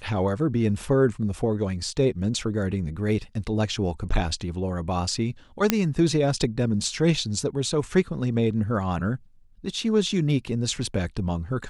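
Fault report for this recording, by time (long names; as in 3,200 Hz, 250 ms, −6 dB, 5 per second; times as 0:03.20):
0:05.70: click −3 dBFS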